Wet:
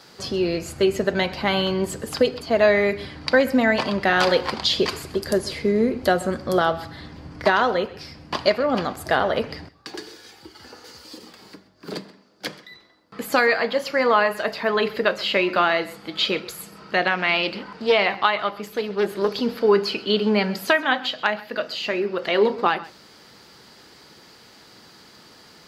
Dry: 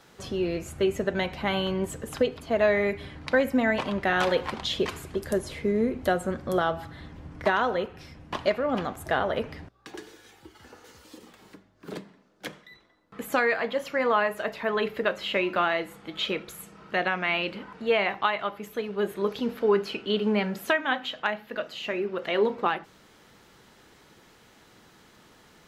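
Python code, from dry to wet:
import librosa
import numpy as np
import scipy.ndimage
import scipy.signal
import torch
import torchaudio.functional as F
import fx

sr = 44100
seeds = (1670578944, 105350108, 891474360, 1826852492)

y = fx.highpass(x, sr, hz=97.0, slope=6)
y = fx.peak_eq(y, sr, hz=4700.0, db=14.0, octaves=0.29)
y = y + 10.0 ** (-19.5 / 20.0) * np.pad(y, (int(130 * sr / 1000.0), 0))[:len(y)]
y = fx.doppler_dist(y, sr, depth_ms=0.18, at=(17.07, 19.32))
y = y * librosa.db_to_amplitude(5.5)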